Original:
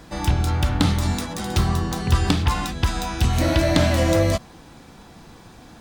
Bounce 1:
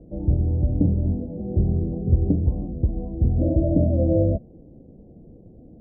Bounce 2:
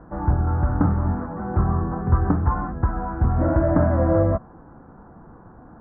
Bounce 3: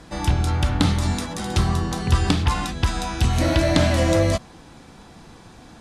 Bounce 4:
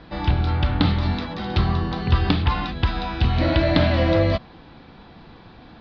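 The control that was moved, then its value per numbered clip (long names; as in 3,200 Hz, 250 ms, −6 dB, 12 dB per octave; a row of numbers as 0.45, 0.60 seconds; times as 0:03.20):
Butterworth low-pass, frequency: 590, 1,500, 12,000, 4,500 Hertz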